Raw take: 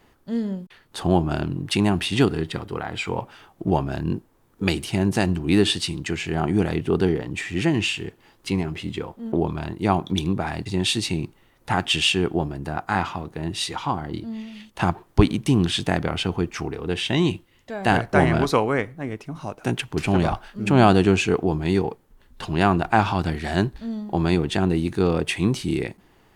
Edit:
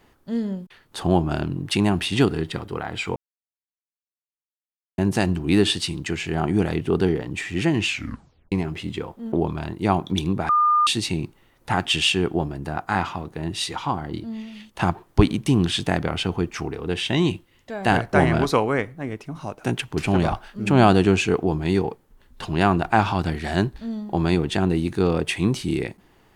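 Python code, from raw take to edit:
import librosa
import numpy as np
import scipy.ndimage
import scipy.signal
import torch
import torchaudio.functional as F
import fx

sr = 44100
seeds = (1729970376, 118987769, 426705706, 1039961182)

y = fx.edit(x, sr, fx.silence(start_s=3.16, length_s=1.82),
    fx.tape_stop(start_s=7.87, length_s=0.65),
    fx.bleep(start_s=10.49, length_s=0.38, hz=1210.0, db=-14.5), tone=tone)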